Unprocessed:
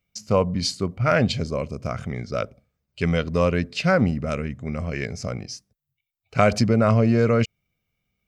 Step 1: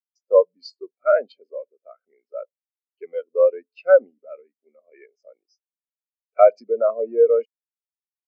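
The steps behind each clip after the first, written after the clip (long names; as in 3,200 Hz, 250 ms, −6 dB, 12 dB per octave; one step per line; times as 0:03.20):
high-pass filter 340 Hz 24 dB per octave
every bin expanded away from the loudest bin 2.5 to 1
level +3 dB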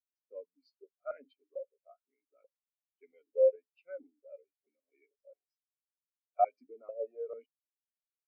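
comb filter 7.1 ms, depth 54%
formant filter that steps through the vowels 4.5 Hz
level −9 dB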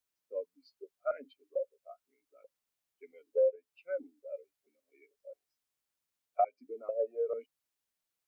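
downward compressor 3 to 1, threshold −36 dBFS, peak gain reduction 12 dB
level +8 dB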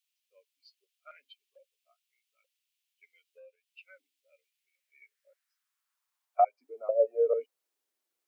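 high-pass filter sweep 2,800 Hz → 340 Hz, 0:04.42–0:07.93
level +1.5 dB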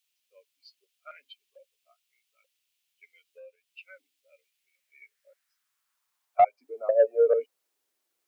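soft clipping −14.5 dBFS, distortion −22 dB
level +5.5 dB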